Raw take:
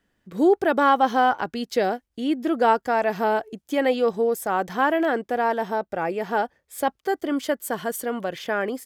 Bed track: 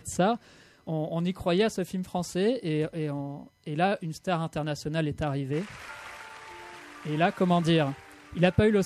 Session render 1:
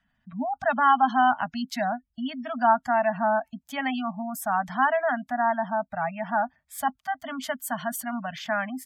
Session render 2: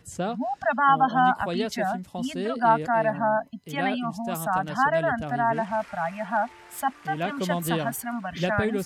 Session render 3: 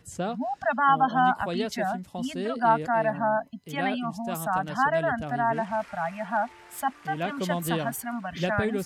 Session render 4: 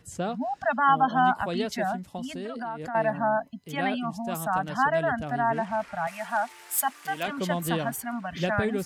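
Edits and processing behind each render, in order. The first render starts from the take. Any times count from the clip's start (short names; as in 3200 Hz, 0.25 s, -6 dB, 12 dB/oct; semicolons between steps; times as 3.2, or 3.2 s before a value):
Chebyshev band-stop 260–630 Hz, order 4; spectral gate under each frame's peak -25 dB strong
add bed track -4.5 dB
gain -1.5 dB
2.17–2.95 compressor, threshold -31 dBFS; 6.07–7.28 RIAA curve recording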